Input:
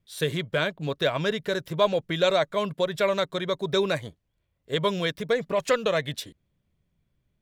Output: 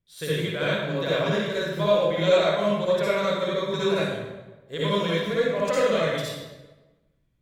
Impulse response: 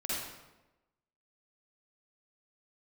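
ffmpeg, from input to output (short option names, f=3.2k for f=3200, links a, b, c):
-filter_complex "[1:a]atrim=start_sample=2205,asetrate=37926,aresample=44100[a];[0:a][a]afir=irnorm=-1:irlink=0,volume=-4.5dB"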